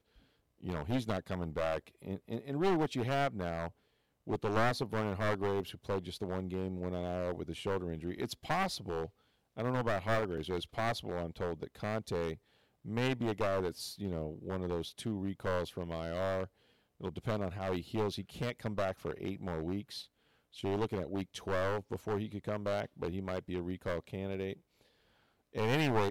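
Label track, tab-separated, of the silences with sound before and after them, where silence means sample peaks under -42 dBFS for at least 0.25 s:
3.680000	4.270000	silence
9.060000	9.580000	silence
12.350000	12.860000	silence
16.460000	17.010000	silence
20.020000	20.570000	silence
24.530000	25.550000	silence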